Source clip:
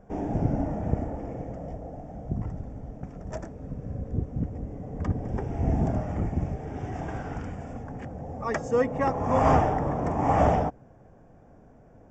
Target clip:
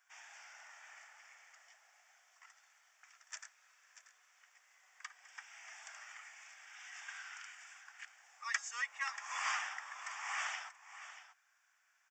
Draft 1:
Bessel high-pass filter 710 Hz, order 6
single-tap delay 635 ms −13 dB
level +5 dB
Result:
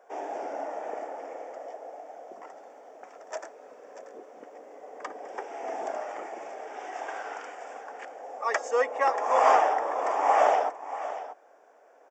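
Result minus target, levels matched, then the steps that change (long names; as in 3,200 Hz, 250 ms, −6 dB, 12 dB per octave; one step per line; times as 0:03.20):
2,000 Hz band −10.0 dB
change: Bessel high-pass filter 2,400 Hz, order 6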